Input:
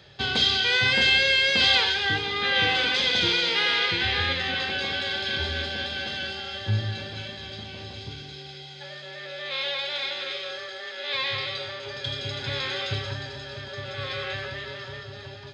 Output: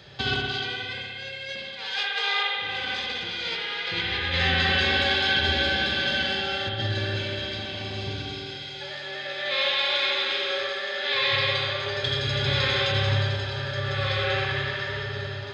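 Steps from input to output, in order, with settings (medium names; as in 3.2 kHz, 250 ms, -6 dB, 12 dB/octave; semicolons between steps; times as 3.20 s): compressor with a negative ratio -28 dBFS, ratio -0.5; 1.65–2.55 s: steep high-pass 440 Hz 96 dB/octave; reverberation RT60 2.0 s, pre-delay 59 ms, DRR -1 dB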